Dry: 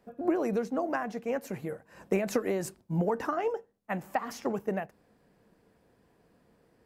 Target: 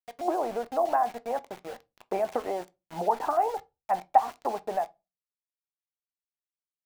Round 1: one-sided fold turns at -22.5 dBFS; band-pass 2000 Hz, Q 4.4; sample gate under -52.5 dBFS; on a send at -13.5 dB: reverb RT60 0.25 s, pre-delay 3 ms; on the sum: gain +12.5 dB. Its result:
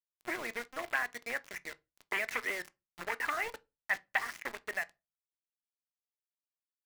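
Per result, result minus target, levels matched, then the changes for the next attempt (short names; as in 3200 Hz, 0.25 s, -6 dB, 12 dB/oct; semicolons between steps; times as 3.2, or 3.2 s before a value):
2000 Hz band +19.0 dB; one-sided fold: distortion +27 dB
change: band-pass 800 Hz, Q 4.4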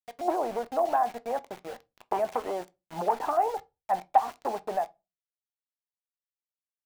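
one-sided fold: distortion +27 dB
change: one-sided fold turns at -15.5 dBFS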